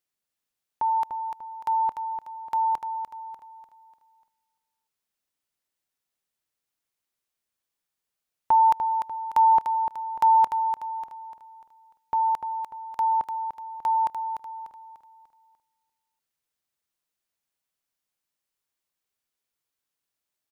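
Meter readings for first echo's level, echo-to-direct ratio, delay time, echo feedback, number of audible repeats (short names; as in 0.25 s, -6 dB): -7.0 dB, -6.0 dB, 0.296 s, 41%, 4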